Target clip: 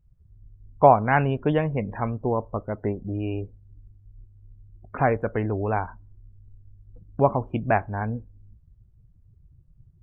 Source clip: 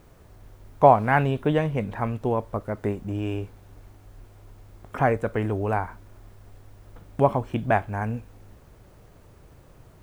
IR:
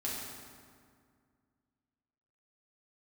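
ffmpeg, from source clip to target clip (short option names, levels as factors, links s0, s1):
-af "afftdn=nr=34:nf=-39"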